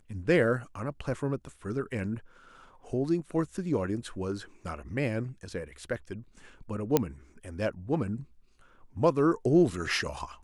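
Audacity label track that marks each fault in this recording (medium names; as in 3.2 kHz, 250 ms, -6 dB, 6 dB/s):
6.970000	6.970000	pop -8 dBFS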